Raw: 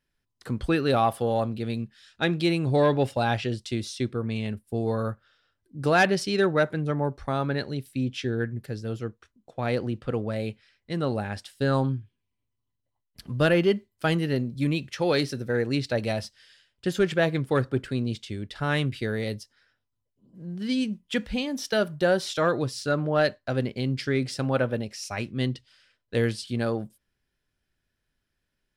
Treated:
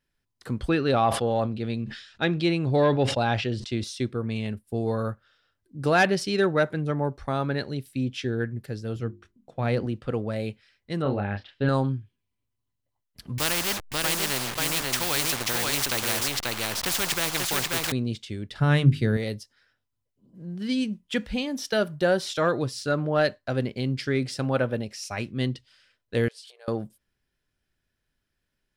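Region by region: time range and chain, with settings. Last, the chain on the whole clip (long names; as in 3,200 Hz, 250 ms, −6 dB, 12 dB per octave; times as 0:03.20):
0:00.69–0:03.84: low-pass filter 5,900 Hz + level that may fall only so fast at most 85 dB per second
0:08.95–0:09.86: bass and treble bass +5 dB, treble −3 dB + mains-hum notches 50/100/150/200/250/300/350/400 Hz
0:11.02–0:11.69: low-pass filter 3,300 Hz 24 dB per octave + double-tracking delay 30 ms −4.5 dB
0:13.38–0:17.92: hold until the input has moved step −38 dBFS + single-tap delay 537 ms −5 dB + every bin compressed towards the loudest bin 4 to 1
0:18.51–0:19.17: parametric band 140 Hz +11.5 dB 1.7 octaves + mains-hum notches 50/100/150/200/250/300/350/400 Hz
0:26.28–0:26.68: downward compressor 10 to 1, threshold −41 dBFS + linear-phase brick-wall high-pass 390 Hz
whole clip: no processing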